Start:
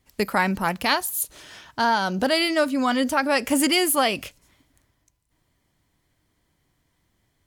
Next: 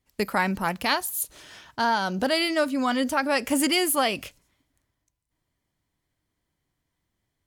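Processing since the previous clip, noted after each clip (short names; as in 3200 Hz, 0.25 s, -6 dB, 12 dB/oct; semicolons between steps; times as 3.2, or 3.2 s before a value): gate -52 dBFS, range -7 dB; gain -2.5 dB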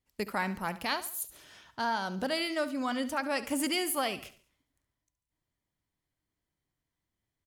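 feedback echo 70 ms, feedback 40%, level -15 dB; gain -8 dB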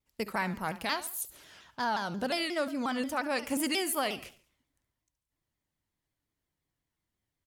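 shaped vibrato saw down 5.6 Hz, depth 160 cents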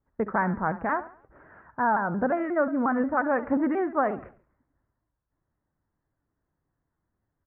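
steep low-pass 1700 Hz 48 dB/oct; gain +7.5 dB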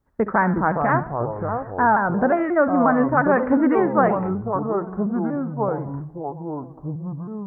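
echoes that change speed 0.296 s, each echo -5 st, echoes 2, each echo -6 dB; gain +6.5 dB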